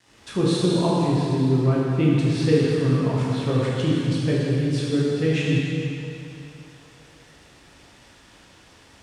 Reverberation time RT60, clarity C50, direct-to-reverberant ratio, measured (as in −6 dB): 2.9 s, −3.0 dB, −6.5 dB